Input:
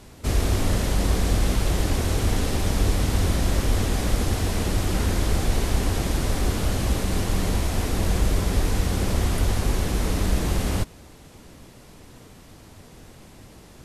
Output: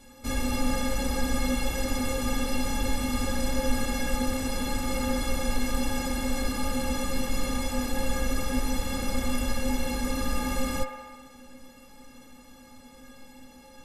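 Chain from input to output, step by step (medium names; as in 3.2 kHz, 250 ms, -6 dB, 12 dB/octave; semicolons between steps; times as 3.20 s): inharmonic resonator 250 Hz, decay 0.21 s, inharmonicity 0.03; feedback echo behind a band-pass 65 ms, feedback 75%, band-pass 1.2 kHz, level -6 dB; trim +9 dB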